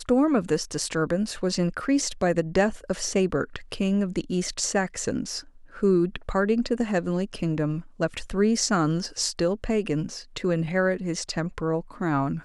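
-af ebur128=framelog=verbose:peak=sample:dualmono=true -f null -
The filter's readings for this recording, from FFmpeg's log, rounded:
Integrated loudness:
  I:         -22.9 LUFS
  Threshold: -32.9 LUFS
Loudness range:
  LRA:         1.5 LU
  Threshold: -43.0 LUFS
  LRA low:   -23.8 LUFS
  LRA high:  -22.3 LUFS
Sample peak:
  Peak:       -7.6 dBFS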